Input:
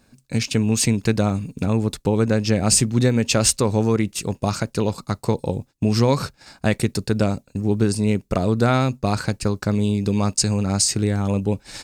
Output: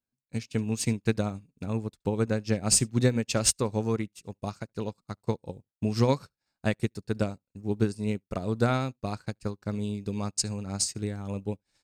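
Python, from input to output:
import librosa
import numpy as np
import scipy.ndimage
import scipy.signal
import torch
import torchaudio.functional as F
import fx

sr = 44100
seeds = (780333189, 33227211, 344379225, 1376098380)

y = x + 10.0 ** (-24.0 / 20.0) * np.pad(x, (int(72 * sr / 1000.0), 0))[:len(x)]
y = fx.upward_expand(y, sr, threshold_db=-36.0, expansion=2.5)
y = y * librosa.db_to_amplitude(-3.5)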